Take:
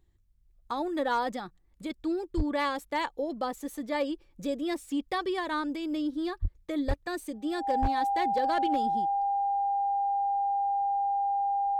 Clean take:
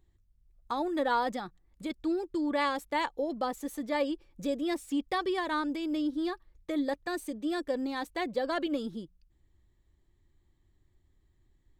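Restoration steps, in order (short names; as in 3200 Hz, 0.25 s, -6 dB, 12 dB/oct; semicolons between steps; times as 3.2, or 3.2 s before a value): clip repair -20 dBFS; notch 800 Hz, Q 30; de-plosive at 2.36/6.41/6.87/7.81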